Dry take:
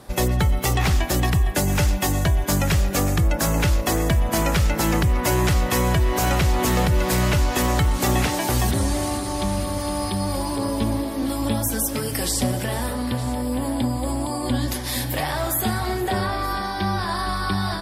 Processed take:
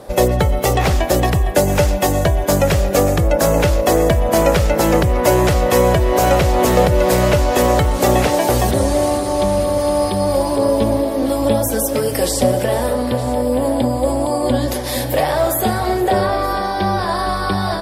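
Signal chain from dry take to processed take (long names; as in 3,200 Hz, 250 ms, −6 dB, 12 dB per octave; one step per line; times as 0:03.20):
parametric band 540 Hz +12.5 dB 0.99 octaves
level +2.5 dB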